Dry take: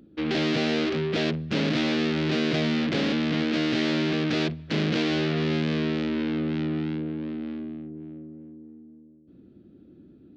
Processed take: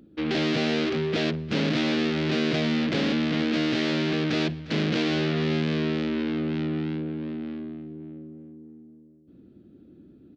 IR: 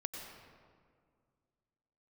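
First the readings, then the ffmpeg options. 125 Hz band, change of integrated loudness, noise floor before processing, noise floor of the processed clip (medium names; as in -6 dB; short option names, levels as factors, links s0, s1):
0.0 dB, 0.0 dB, -53 dBFS, -53 dBFS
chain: -af "aecho=1:1:353|706:0.119|0.0297"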